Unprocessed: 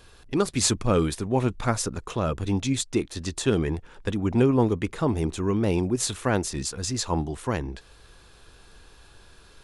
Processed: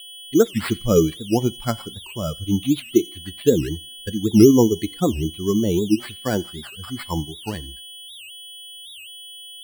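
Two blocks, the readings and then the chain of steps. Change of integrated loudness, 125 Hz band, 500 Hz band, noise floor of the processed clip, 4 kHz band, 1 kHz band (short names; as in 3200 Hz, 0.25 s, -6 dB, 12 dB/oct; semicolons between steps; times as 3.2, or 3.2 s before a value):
+5.0 dB, +1.5 dB, +6.0 dB, -40 dBFS, +4.0 dB, -1.5 dB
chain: per-bin expansion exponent 2; steep low-pass 5300 Hz 72 dB/oct; bell 270 Hz +10 dB 2 oct; whine 3300 Hz -38 dBFS; two-slope reverb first 0.34 s, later 1.6 s, from -26 dB, DRR 18 dB; dynamic EQ 410 Hz, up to +4 dB, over -31 dBFS, Q 2.8; sample-and-hold 7×; thin delay 87 ms, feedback 32%, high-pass 2300 Hz, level -21 dB; record warp 78 rpm, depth 250 cents; gain +1 dB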